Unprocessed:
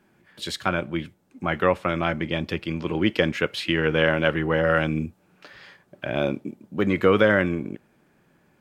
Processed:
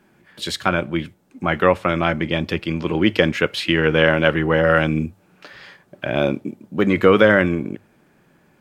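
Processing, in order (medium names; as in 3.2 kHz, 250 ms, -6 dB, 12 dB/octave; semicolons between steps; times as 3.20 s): hum notches 50/100 Hz; trim +5 dB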